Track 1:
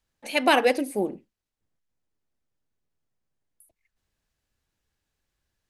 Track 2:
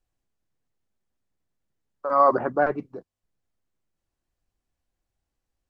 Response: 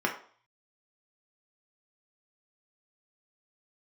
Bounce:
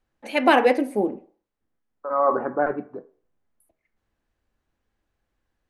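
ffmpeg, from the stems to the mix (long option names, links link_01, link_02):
-filter_complex "[0:a]volume=1dB,asplit=3[link_01][link_02][link_03];[link_02]volume=-15dB[link_04];[1:a]highshelf=frequency=6000:gain=-10,volume=2dB,asplit=2[link_05][link_06];[link_06]volume=-18.5dB[link_07];[link_03]apad=whole_len=251293[link_08];[link_05][link_08]sidechaincompress=threshold=-40dB:ratio=3:attack=16:release=1480[link_09];[2:a]atrim=start_sample=2205[link_10];[link_04][link_07]amix=inputs=2:normalize=0[link_11];[link_11][link_10]afir=irnorm=-1:irlink=0[link_12];[link_01][link_09][link_12]amix=inputs=3:normalize=0,highshelf=frequency=3300:gain=-11.5"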